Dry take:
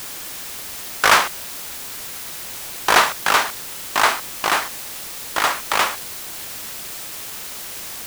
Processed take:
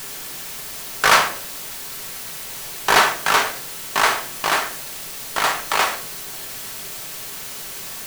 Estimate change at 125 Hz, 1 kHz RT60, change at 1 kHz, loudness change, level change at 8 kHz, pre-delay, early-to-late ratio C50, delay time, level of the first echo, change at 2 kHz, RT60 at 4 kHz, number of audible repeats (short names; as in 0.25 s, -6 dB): +2.0 dB, 0.45 s, -0.5 dB, 0.0 dB, -0.5 dB, 5 ms, 11.5 dB, none, none, 0.0 dB, 0.40 s, none